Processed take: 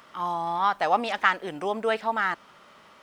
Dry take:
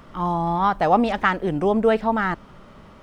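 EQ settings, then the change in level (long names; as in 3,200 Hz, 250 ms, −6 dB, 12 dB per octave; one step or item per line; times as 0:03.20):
high-pass filter 1,500 Hz 6 dB per octave
+2.0 dB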